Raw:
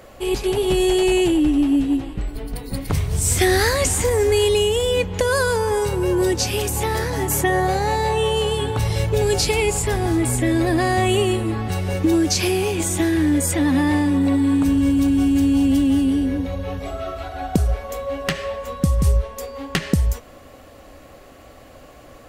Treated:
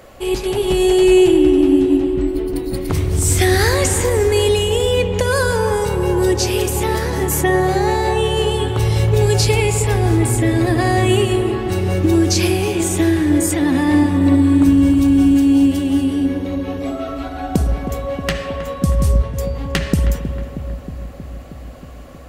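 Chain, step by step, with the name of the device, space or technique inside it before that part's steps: 15.34–17.09 HPF 170 Hz 6 dB/oct; dub delay into a spring reverb (darkening echo 0.316 s, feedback 74%, low-pass 1200 Hz, level -9 dB; spring tank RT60 2.1 s, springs 54 ms, chirp 25 ms, DRR 10 dB); gain +1.5 dB

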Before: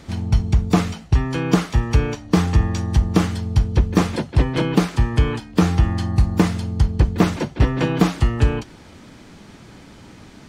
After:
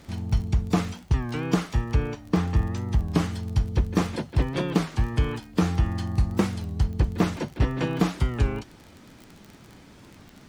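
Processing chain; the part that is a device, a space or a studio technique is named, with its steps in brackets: 1.84–3.1 high shelf 4300 Hz -9 dB; warped LP (record warp 33 1/3 rpm, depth 160 cents; crackle 31/s -28 dBFS; pink noise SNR 41 dB); gain -6.5 dB

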